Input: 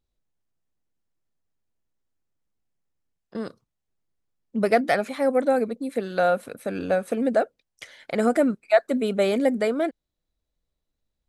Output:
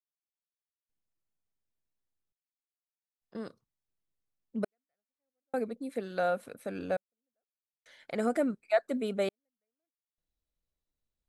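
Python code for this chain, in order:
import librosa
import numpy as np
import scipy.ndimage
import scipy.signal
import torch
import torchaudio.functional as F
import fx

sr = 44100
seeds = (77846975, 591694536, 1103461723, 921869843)

y = fx.step_gate(x, sr, bpm=84, pattern='.....xxxxxxxx', floor_db=-60.0, edge_ms=4.5)
y = y * librosa.db_to_amplitude(-8.5)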